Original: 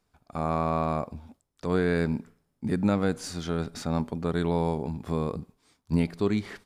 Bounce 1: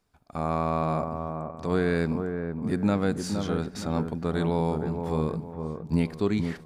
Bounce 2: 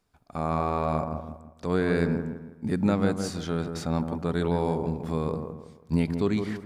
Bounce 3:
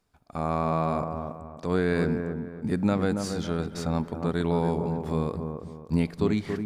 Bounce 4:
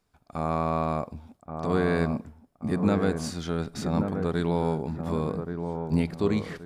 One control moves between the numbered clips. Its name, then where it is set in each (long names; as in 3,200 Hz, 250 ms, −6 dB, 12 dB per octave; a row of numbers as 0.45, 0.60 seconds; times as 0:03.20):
delay with a low-pass on its return, delay time: 466, 163, 278, 1,128 milliseconds